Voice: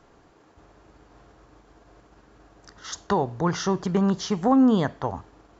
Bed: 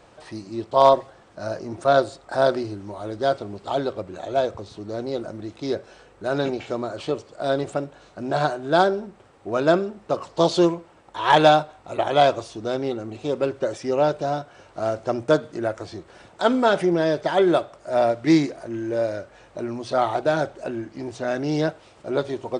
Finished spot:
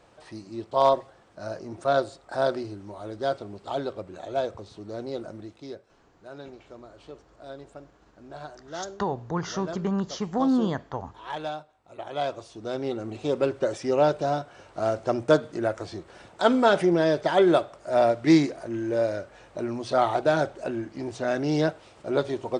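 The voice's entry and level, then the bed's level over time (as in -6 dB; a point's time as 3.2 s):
5.90 s, -5.0 dB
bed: 5.38 s -5.5 dB
5.91 s -18.5 dB
11.73 s -18.5 dB
13.07 s -1 dB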